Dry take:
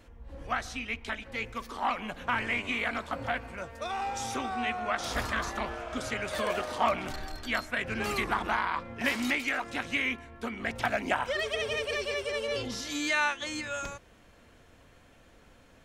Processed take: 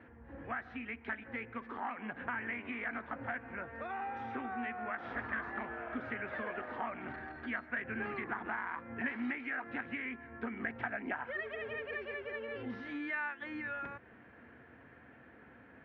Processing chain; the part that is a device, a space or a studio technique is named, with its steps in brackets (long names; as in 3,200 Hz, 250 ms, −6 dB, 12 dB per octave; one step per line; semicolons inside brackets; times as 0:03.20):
bass amplifier (downward compressor 3 to 1, threshold −41 dBFS, peak gain reduction 14.5 dB; loudspeaker in its box 84–2,100 Hz, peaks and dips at 97 Hz −7 dB, 170 Hz −5 dB, 240 Hz +3 dB, 580 Hz −6 dB, 1,100 Hz −4 dB, 1,700 Hz +6 dB)
level +2.5 dB